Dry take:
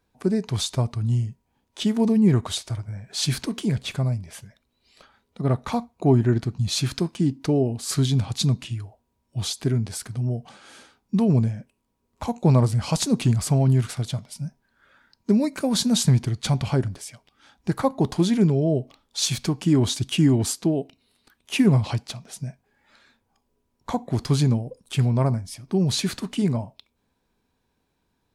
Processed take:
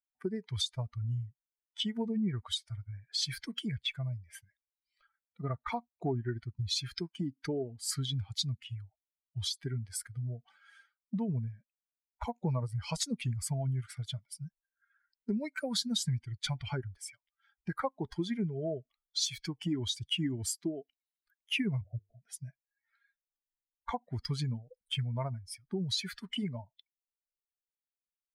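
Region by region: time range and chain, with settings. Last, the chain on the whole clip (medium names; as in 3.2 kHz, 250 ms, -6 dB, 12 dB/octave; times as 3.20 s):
21.81–22.23 s: steep low-pass 710 Hz 96 dB/octave + hum notches 50/100/150/200/250/300/350/400/450/500 Hz
whole clip: expander on every frequency bin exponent 2; peaking EQ 3 kHz +9.5 dB 2.5 oct; compression 3:1, threshold -39 dBFS; trim +3.5 dB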